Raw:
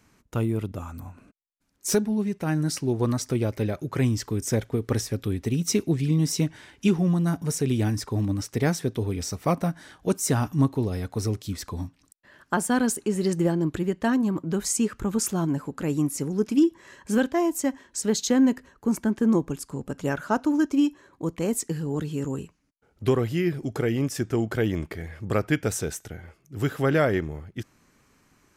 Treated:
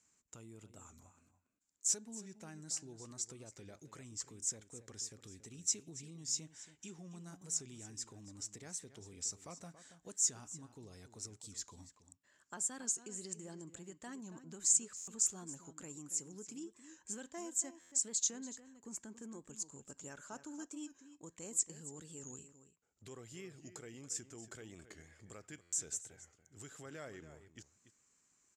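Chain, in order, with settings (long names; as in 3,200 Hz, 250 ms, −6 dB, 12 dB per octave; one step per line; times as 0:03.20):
spectral tilt −4.5 dB per octave
downward compressor 2.5 to 1, threshold −14 dBFS, peak gain reduction 7 dB
brickwall limiter −11.5 dBFS, peak gain reduction 6.5 dB
resonant band-pass 7,300 Hz, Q 7.7
slap from a distant wall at 48 metres, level −12 dB
buffer that repeats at 0:14.96/0:17.80/0:25.61, samples 512, times 9
wow of a warped record 45 rpm, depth 100 cents
level +16 dB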